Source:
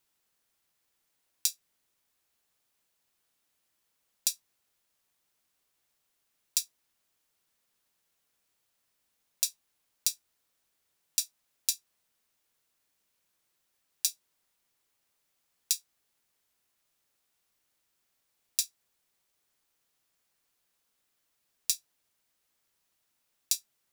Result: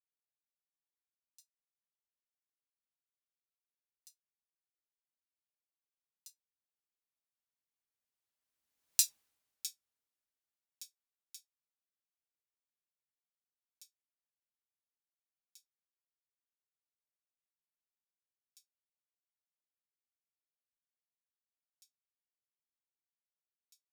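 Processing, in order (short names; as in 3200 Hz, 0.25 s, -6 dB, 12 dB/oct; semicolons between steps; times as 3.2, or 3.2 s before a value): Doppler pass-by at 9.07, 16 m/s, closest 1.3 m; notch comb 180 Hz; gain +5.5 dB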